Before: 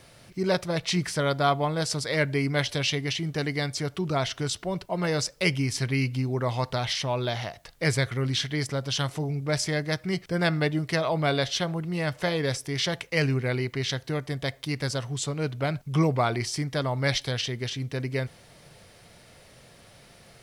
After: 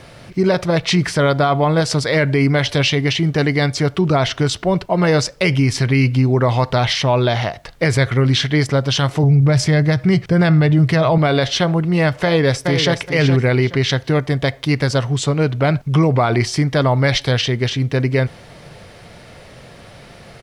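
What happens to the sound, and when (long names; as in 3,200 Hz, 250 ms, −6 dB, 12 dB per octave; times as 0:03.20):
0:09.23–0:11.18: parametric band 120 Hz +12 dB
0:12.23–0:12.96: delay throw 420 ms, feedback 20%, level −7.5 dB
whole clip: low-pass filter 2,900 Hz 6 dB per octave; boost into a limiter +19 dB; level −5.5 dB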